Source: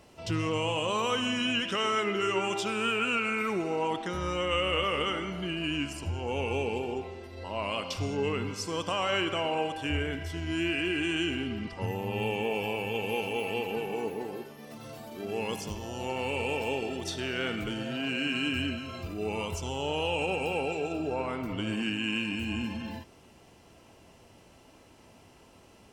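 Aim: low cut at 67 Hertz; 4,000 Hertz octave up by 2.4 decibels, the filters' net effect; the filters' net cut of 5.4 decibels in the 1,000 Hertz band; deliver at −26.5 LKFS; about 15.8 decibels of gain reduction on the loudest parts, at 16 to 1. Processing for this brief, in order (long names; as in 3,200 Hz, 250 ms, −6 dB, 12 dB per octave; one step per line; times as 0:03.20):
high-pass filter 67 Hz
parametric band 1,000 Hz −7.5 dB
parametric band 4,000 Hz +5 dB
downward compressor 16 to 1, threshold −41 dBFS
level +18 dB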